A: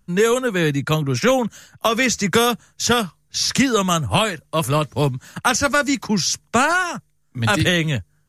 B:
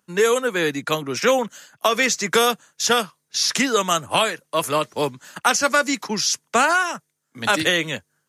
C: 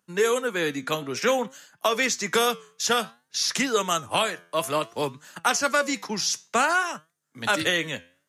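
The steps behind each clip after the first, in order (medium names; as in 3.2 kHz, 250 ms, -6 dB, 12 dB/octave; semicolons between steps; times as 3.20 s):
high-pass 320 Hz 12 dB/octave
flange 0.56 Hz, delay 5.6 ms, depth 6.2 ms, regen +85%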